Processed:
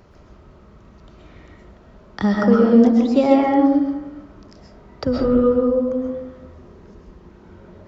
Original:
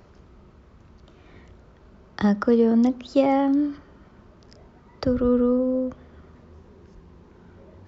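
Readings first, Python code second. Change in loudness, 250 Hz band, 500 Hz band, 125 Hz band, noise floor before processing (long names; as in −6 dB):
+4.5 dB, +5.5 dB, +5.5 dB, +5.5 dB, −53 dBFS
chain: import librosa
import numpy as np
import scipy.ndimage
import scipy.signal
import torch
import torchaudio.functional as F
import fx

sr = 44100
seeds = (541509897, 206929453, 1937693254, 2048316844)

y = fx.rev_freeverb(x, sr, rt60_s=0.98, hf_ratio=0.35, predelay_ms=90, drr_db=-1.5)
y = F.gain(torch.from_numpy(y), 1.5).numpy()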